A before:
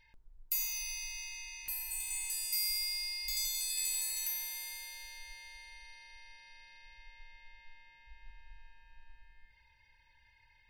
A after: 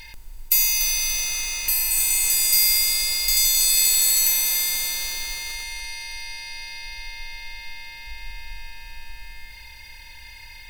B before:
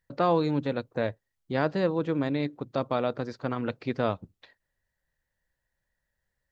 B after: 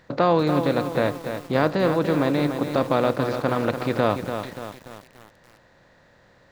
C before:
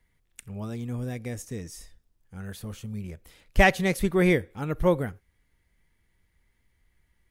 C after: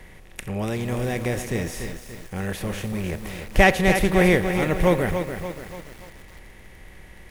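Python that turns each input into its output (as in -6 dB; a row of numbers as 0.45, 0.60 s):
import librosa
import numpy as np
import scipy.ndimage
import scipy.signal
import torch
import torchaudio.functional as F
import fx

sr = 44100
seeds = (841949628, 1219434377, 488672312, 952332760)

y = fx.bin_compress(x, sr, power=0.6)
y = fx.echo_crushed(y, sr, ms=290, feedback_pct=55, bits=7, wet_db=-7.5)
y = y * 10.0 ** (-24 / 20.0) / np.sqrt(np.mean(np.square(y)))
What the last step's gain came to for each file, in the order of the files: +14.0, +3.0, +1.5 dB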